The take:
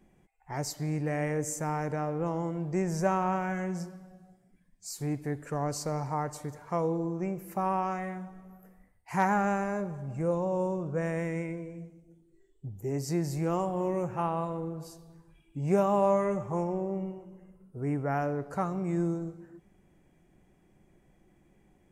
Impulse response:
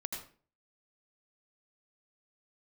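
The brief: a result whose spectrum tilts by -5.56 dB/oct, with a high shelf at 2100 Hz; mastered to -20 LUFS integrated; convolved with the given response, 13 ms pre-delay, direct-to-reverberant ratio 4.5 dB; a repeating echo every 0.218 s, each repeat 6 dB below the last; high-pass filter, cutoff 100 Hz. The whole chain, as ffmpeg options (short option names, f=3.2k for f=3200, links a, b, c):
-filter_complex "[0:a]highpass=100,highshelf=f=2.1k:g=-5.5,aecho=1:1:218|436|654|872|1090|1308:0.501|0.251|0.125|0.0626|0.0313|0.0157,asplit=2[a][b];[1:a]atrim=start_sample=2205,adelay=13[c];[b][c]afir=irnorm=-1:irlink=0,volume=-5dB[d];[a][d]amix=inputs=2:normalize=0,volume=9.5dB"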